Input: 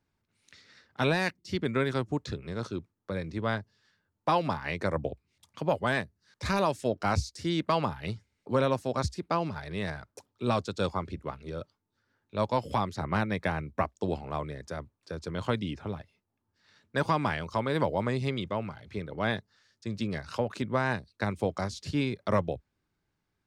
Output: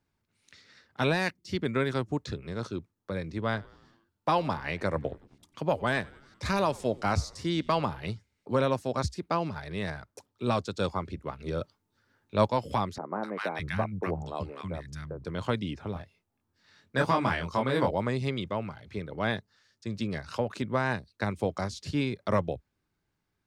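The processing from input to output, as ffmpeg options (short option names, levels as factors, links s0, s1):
-filter_complex "[0:a]asettb=1/sr,asplit=3[s0][s1][s2];[s0]atrim=end=3.344[s3];[s1]atrim=start=3.34:end=8.12,asetpts=PTS-STARTPTS,afade=t=in:d=0.004:c=qsin,afade=t=out:st=4.776:d=0.004:c=qsin,asplit=6[s4][s5][s6][s7][s8][s9];[s5]adelay=94,afreqshift=-90,volume=0.0668[s10];[s6]adelay=188,afreqshift=-180,volume=0.0422[s11];[s7]adelay=282,afreqshift=-270,volume=0.0266[s12];[s8]adelay=376,afreqshift=-360,volume=0.0168[s13];[s9]adelay=470,afreqshift=-450,volume=0.0105[s14];[s4][s10][s11][s12][s13][s14]amix=inputs=6:normalize=0,atrim=end_sample=210798[s15];[s2]atrim=start=8.116[s16];[s3][s15]acrossfade=d=0.004:c1=hsin:c2=qsin[s17];[s17][s16]acrossfade=d=0.004:c1=qsin:c2=hsin,asettb=1/sr,asplit=3[s18][s19][s20];[s18]atrim=end=11.394[s21];[s19]atrim=start=11.39:end=12.48,asetpts=PTS-STARTPTS,afade=t=in:d=0.004:c=qsin,afade=t=out:st=1.086:d=0.004:c=qsin,acontrast=31[s22];[s20]atrim=start=12.476[s23];[s21][s22]acrossfade=d=0.004:c1=hsin:c2=qsin[s24];[s24][s23]acrossfade=d=0.004:c1=qsin:c2=hsin,asettb=1/sr,asplit=3[s25][s26][s27];[s25]atrim=end=12.984[s28];[s26]atrim=start=12.98:end=15.25,asetpts=PTS-STARTPTS,afade=t=in:d=0.004:c=qsin,afade=t=out:st=2.266:d=0.004:c=qsin,acrossover=split=220|1200[s29][s30][s31];[s31]adelay=250[s32];[s29]adelay=610[s33];[s33][s30][s32]amix=inputs=3:normalize=0,atrim=end_sample=100107[s34];[s27]atrim=start=15.246[s35];[s28][s34]acrossfade=d=0.004:c1=hsin:c2=qsin[s36];[s36][s35]acrossfade=d=0.004:c1=qsin:c2=hsin,asettb=1/sr,asplit=3[s37][s38][s39];[s37]atrim=end=15.934[s40];[s38]atrim=start=15.93:end=17.91,asetpts=PTS-STARTPTS,afade=t=in:d=0.004:c=qsin,afade=t=out:st=1.976:d=0.004:c=qsin,asplit=2[s41][s42];[s42]adelay=23,volume=0.75[s43];[s41][s43]amix=inputs=2:normalize=0,atrim=end_sample=87318[s44];[s39]atrim=start=17.906[s45];[s40][s44]acrossfade=d=0.004:c1=hsin:c2=qsin[s46];[s46][s45]acrossfade=d=0.004:c1=qsin:c2=hsin"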